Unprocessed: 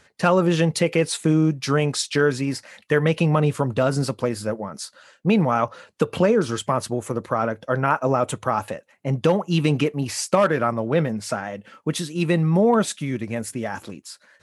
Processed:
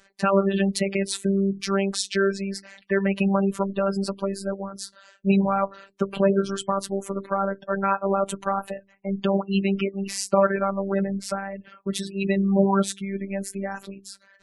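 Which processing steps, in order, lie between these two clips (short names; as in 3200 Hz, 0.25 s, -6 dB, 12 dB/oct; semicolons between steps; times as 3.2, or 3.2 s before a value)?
de-hum 87.51 Hz, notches 4; spectral gate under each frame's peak -25 dB strong; robotiser 196 Hz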